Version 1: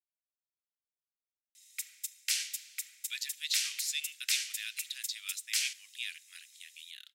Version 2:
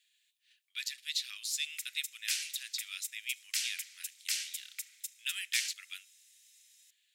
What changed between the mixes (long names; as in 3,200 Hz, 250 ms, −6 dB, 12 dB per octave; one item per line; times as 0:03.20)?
speech: entry −2.35 s
background: send −11.0 dB